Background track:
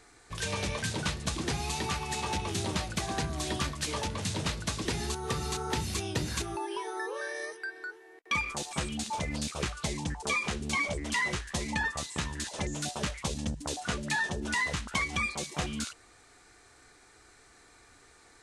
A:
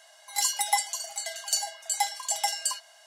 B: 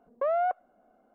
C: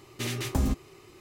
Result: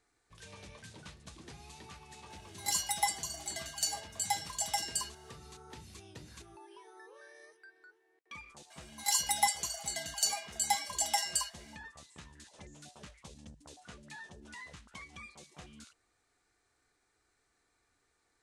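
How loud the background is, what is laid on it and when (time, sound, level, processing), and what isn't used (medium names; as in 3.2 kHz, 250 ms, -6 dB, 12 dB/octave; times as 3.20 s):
background track -18.5 dB
2.30 s: add A -6 dB
8.70 s: add A -3.5 dB
not used: B, C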